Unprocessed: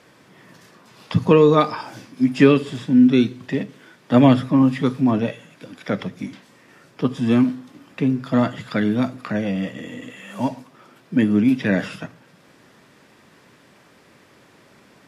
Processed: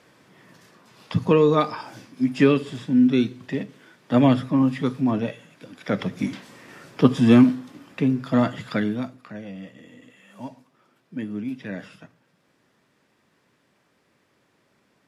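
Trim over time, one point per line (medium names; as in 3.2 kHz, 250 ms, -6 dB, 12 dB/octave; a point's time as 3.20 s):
5.74 s -4 dB
6.27 s +5 dB
7.09 s +5 dB
8.09 s -1.5 dB
8.74 s -1.5 dB
9.22 s -13.5 dB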